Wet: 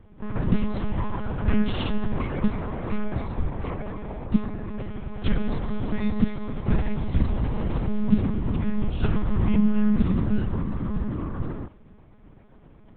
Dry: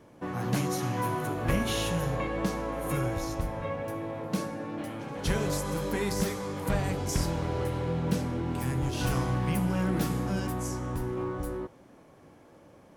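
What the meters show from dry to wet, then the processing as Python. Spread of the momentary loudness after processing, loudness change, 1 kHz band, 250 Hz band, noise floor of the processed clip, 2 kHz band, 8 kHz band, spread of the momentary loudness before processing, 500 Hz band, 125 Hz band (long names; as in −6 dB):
10 LU, +3.5 dB, −3.0 dB, +6.5 dB, −50 dBFS, −2.5 dB, below −40 dB, 7 LU, −2.5 dB, +3.5 dB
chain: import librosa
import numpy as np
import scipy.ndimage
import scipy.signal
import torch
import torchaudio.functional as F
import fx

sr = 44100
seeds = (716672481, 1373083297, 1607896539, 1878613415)

y = fx.low_shelf_res(x, sr, hz=280.0, db=6.5, q=3.0)
y = fx.lpc_monotone(y, sr, seeds[0], pitch_hz=210.0, order=10)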